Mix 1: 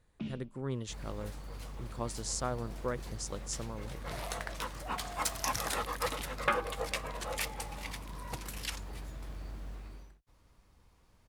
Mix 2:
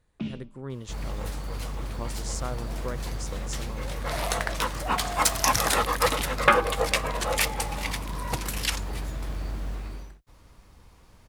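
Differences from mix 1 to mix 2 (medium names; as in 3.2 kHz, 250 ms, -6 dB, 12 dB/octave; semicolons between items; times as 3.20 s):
first sound +7.0 dB; second sound +11.0 dB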